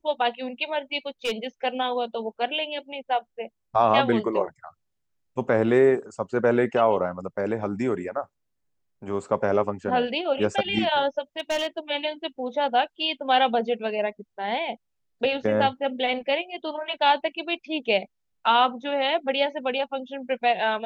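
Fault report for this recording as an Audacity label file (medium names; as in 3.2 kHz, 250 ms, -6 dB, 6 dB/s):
1.250000	1.470000	clipped -21.5 dBFS
11.390000	11.790000	clipped -21.5 dBFS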